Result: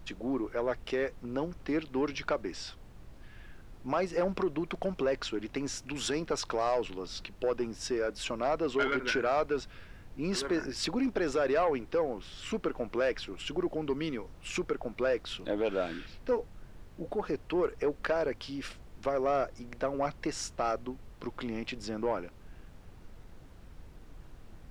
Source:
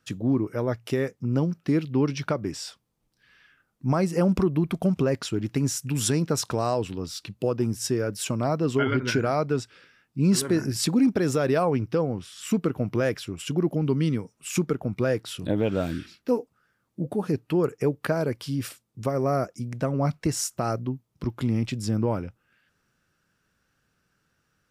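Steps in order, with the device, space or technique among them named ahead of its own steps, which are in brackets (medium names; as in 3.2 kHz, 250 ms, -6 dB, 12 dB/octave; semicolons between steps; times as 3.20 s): aircraft cabin announcement (band-pass 430–4100 Hz; saturation -20.5 dBFS, distortion -17 dB; brown noise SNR 14 dB)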